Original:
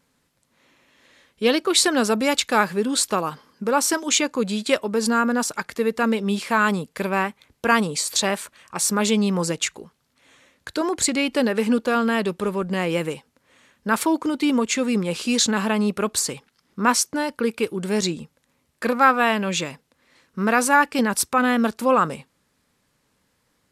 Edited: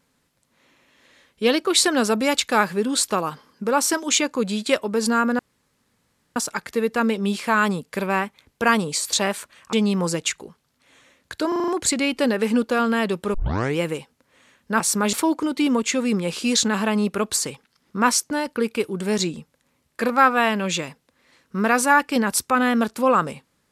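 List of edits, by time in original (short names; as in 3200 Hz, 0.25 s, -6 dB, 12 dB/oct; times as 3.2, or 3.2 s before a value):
5.39 insert room tone 0.97 s
8.76–9.09 move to 13.96
10.84 stutter 0.04 s, 6 plays
12.5 tape start 0.43 s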